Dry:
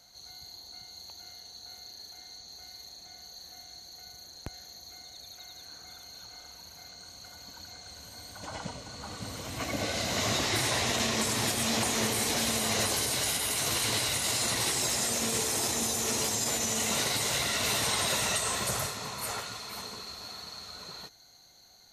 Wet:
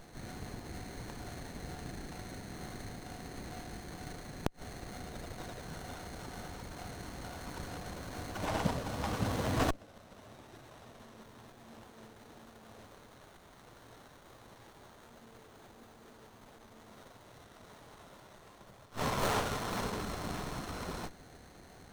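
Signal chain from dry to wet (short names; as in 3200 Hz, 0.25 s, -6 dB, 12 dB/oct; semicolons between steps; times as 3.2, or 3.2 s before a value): flipped gate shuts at -22 dBFS, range -30 dB; running maximum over 17 samples; gain +7.5 dB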